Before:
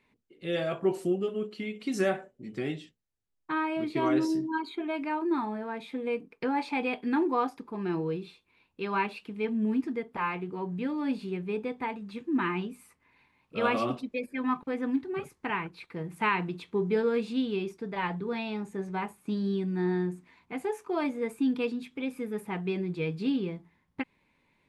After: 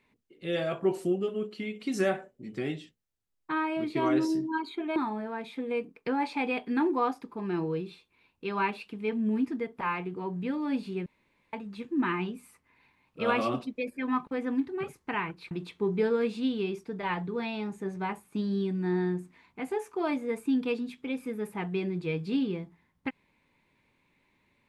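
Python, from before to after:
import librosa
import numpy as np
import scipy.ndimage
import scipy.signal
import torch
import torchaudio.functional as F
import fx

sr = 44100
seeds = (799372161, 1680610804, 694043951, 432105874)

y = fx.edit(x, sr, fx.cut(start_s=4.96, length_s=0.36),
    fx.room_tone_fill(start_s=11.42, length_s=0.47),
    fx.cut(start_s=15.87, length_s=0.57), tone=tone)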